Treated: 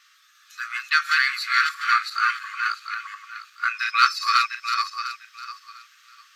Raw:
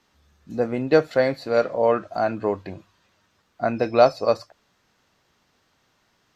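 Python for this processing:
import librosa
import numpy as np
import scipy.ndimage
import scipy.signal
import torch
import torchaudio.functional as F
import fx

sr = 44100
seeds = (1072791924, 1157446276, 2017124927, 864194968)

p1 = fx.reverse_delay_fb(x, sr, ms=350, feedback_pct=44, wet_db=-2.0)
p2 = np.clip(p1, -10.0 ** (-19.5 / 20.0), 10.0 ** (-19.5 / 20.0))
p3 = p1 + F.gain(torch.from_numpy(p2), -11.5).numpy()
p4 = fx.wow_flutter(p3, sr, seeds[0], rate_hz=2.1, depth_cents=26.0)
p5 = fx.brickwall_highpass(p4, sr, low_hz=1100.0)
y = F.gain(torch.from_numpy(p5), 9.0).numpy()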